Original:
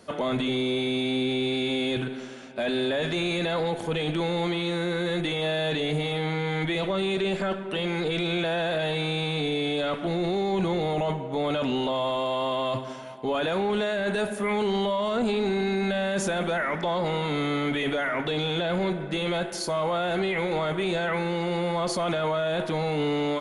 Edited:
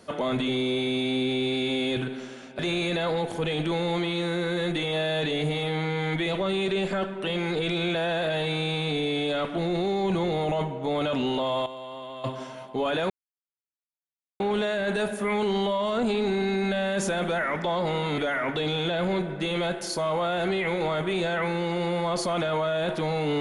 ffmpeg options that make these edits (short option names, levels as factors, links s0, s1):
-filter_complex "[0:a]asplit=6[s0][s1][s2][s3][s4][s5];[s0]atrim=end=2.592[s6];[s1]atrim=start=3.078:end=12.152[s7];[s2]atrim=start=12.148:end=12.732,asetpts=PTS-STARTPTS,volume=0.266[s8];[s3]atrim=start=12.728:end=13.59,asetpts=PTS-STARTPTS,afade=t=out:st=0.858:d=0.004:c=hsin,apad=pad_dur=1.3[s9];[s4]atrim=start=13.59:end=17.372,asetpts=PTS-STARTPTS,afade=t=in:d=0.004:c=hsin[s10];[s5]atrim=start=17.888[s11];[s6][s7]acrossfade=d=0.004:c1=hsin:c2=hsin[s12];[s12][s8]acrossfade=d=0.004:c1=hsin:c2=hsin[s13];[s9][s10]concat=n=2:v=0:a=1[s14];[s13][s14]acrossfade=d=0.004:c1=hsin:c2=hsin[s15];[s15][s11]acrossfade=d=0.004:c1=hsin:c2=hsin"